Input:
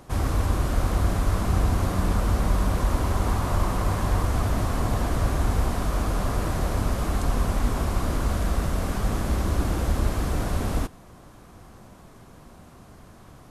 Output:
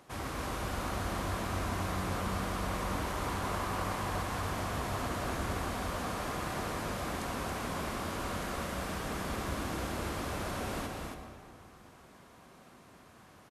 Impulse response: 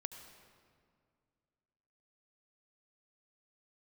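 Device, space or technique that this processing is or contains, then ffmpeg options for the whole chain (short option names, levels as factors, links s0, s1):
stadium PA: -filter_complex "[0:a]highpass=f=240:p=1,equalizer=f=2400:t=o:w=1.8:g=4.5,aecho=1:1:244.9|277:0.282|0.631[s0];[1:a]atrim=start_sample=2205[s1];[s0][s1]afir=irnorm=-1:irlink=0,volume=0.562"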